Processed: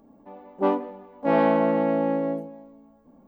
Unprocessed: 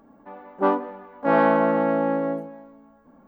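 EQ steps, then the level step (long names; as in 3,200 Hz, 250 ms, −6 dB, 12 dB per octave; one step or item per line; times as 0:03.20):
parametric band 1,500 Hz −12.5 dB 1.1 octaves
dynamic equaliser 2,100 Hz, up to +6 dB, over −42 dBFS, Q 1.1
0.0 dB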